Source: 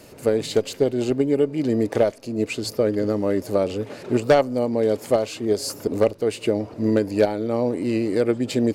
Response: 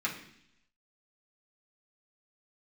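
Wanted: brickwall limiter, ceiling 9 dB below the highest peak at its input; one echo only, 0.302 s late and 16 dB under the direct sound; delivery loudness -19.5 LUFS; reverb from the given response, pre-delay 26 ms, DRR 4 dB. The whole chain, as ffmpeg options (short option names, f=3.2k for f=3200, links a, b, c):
-filter_complex "[0:a]alimiter=limit=-16dB:level=0:latency=1,aecho=1:1:302:0.158,asplit=2[a][b];[1:a]atrim=start_sample=2205,adelay=26[c];[b][c]afir=irnorm=-1:irlink=0,volume=-10.5dB[d];[a][d]amix=inputs=2:normalize=0,volume=6dB"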